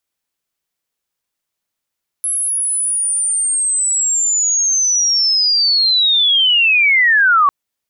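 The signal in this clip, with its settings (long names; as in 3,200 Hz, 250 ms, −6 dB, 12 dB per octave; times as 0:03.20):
glide linear 11,000 Hz → 1,100 Hz −15.5 dBFS → −8 dBFS 5.25 s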